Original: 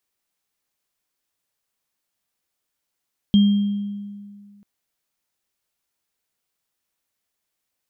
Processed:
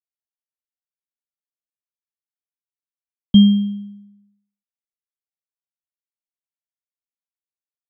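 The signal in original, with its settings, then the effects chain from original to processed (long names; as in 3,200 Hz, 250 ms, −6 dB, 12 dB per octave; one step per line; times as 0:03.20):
inharmonic partials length 1.29 s, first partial 203 Hz, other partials 3,210 Hz, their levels −14.5 dB, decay 2.00 s, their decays 0.94 s, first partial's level −9.5 dB
downward expander −40 dBFS
multiband upward and downward expander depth 100%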